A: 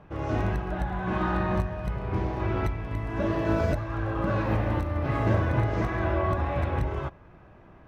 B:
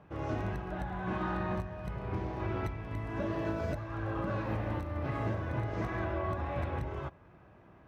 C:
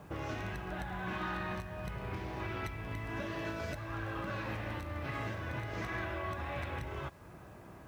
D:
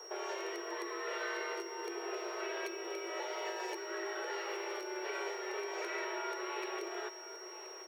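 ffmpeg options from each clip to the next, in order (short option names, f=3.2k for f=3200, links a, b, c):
-af "highpass=62,alimiter=limit=-19dB:level=0:latency=1:release=466,volume=-5dB"
-filter_complex "[0:a]acrossover=split=1600[a][b];[a]acompressor=threshold=-44dB:ratio=5[c];[c][b]amix=inputs=2:normalize=0,acrusher=bits=11:mix=0:aa=0.000001,volume=5.5dB"
-af "afreqshift=290,aecho=1:1:1026:0.224,aeval=exprs='val(0)+0.00398*sin(2*PI*5600*n/s)':c=same,volume=-1.5dB"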